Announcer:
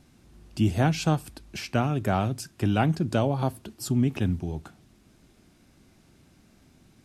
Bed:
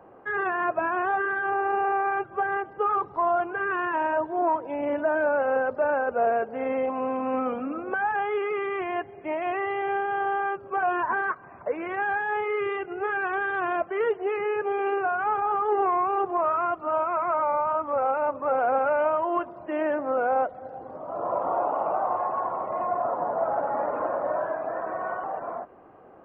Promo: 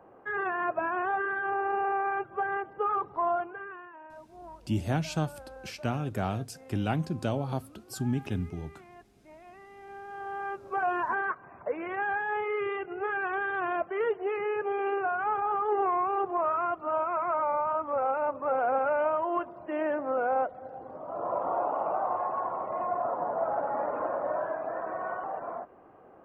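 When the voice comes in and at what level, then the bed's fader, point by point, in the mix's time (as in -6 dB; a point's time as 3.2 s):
4.10 s, -6.0 dB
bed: 3.32 s -4 dB
3.96 s -23 dB
9.69 s -23 dB
10.67 s -3.5 dB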